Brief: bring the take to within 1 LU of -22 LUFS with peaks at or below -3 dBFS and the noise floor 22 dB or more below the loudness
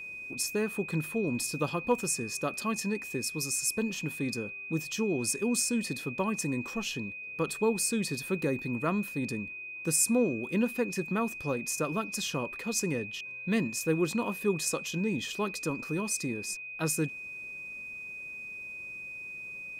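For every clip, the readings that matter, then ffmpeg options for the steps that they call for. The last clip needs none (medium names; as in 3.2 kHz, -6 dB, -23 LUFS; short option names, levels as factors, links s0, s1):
steady tone 2.5 kHz; tone level -39 dBFS; loudness -31.5 LUFS; peak level -15.0 dBFS; loudness target -22.0 LUFS
-> -af "bandreject=f=2500:w=30"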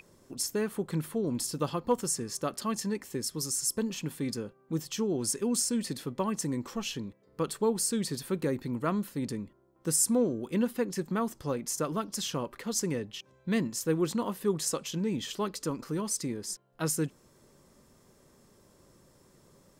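steady tone not found; loudness -31.5 LUFS; peak level -15.5 dBFS; loudness target -22.0 LUFS
-> -af "volume=2.99"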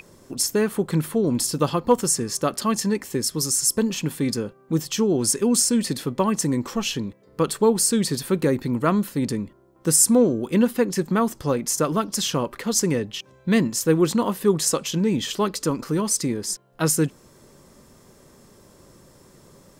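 loudness -22.0 LUFS; peak level -6.0 dBFS; noise floor -53 dBFS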